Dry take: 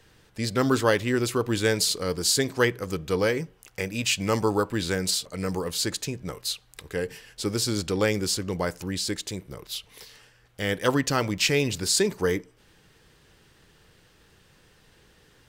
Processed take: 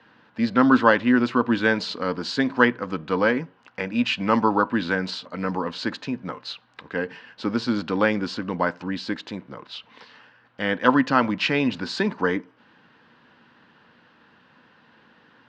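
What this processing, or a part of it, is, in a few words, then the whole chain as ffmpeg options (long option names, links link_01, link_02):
kitchen radio: -af "highpass=210,equalizer=frequency=240:width_type=q:width=4:gain=10,equalizer=frequency=400:width_type=q:width=4:gain=-9,equalizer=frequency=980:width_type=q:width=4:gain=7,equalizer=frequency=1500:width_type=q:width=4:gain=5,equalizer=frequency=2200:width_type=q:width=4:gain=-4,equalizer=frequency=3400:width_type=q:width=4:gain=-4,lowpass=frequency=3600:width=0.5412,lowpass=frequency=3600:width=1.3066,volume=4dB"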